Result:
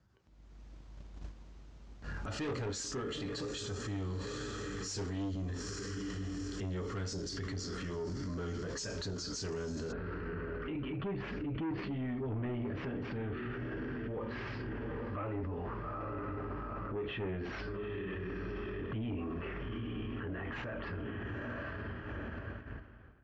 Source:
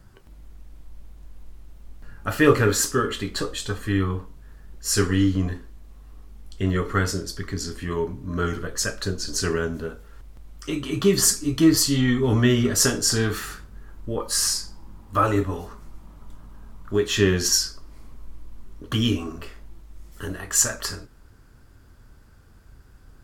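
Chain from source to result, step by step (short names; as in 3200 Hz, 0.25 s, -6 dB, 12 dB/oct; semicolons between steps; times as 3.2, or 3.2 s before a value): HPF 53 Hz 24 dB/oct; diffused feedback echo 0.882 s, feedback 47%, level -15.5 dB; dynamic EQ 1400 Hz, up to -7 dB, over -40 dBFS, Q 0.83; soft clip -21 dBFS, distortion -8 dB; AGC gain up to 14 dB; gate -32 dBFS, range -16 dB; steep low-pass 6900 Hz 36 dB/oct, from 9.91 s 2600 Hz; limiter -33 dBFS, peak gain reduction 27 dB; ending taper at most 130 dB/s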